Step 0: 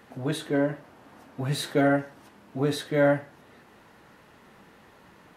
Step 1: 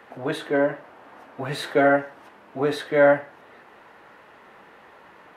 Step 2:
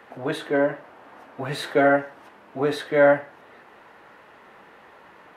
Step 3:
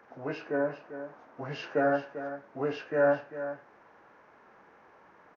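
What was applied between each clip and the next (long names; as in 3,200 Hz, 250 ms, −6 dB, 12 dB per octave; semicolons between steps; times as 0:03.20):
three-way crossover with the lows and the highs turned down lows −13 dB, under 370 Hz, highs −12 dB, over 3,000 Hz; level +7 dB
no processing that can be heard
hearing-aid frequency compression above 1,400 Hz 1.5 to 1; single-tap delay 395 ms −11.5 dB; level −8 dB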